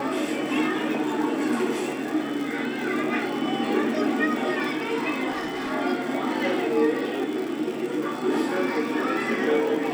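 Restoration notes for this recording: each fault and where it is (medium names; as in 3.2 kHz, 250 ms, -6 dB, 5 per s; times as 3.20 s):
crackle 110 per s -31 dBFS
5.30–5.72 s: clipped -26 dBFS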